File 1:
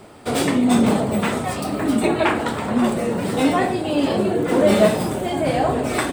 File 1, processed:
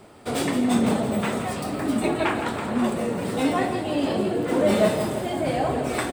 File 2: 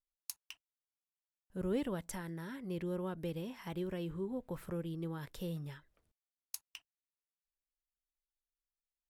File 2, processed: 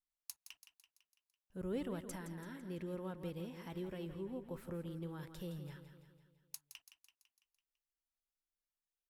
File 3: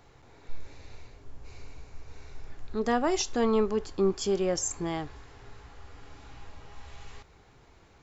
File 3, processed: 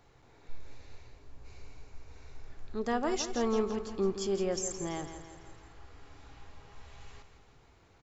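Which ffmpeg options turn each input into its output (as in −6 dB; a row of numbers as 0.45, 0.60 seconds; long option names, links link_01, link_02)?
-af "aecho=1:1:167|334|501|668|835|1002:0.316|0.171|0.0922|0.0498|0.0269|0.0145,volume=-5dB"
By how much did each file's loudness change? −4.5, −4.5, −4.5 LU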